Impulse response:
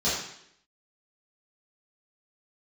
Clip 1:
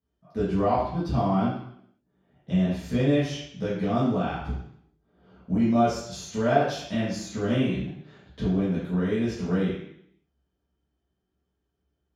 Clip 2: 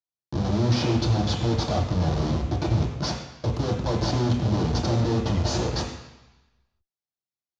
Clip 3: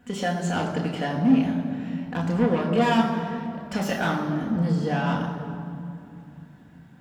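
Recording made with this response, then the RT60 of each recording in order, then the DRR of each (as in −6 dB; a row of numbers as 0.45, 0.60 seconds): 1; 0.70, 1.0, 2.6 seconds; −11.5, −0.5, −1.0 decibels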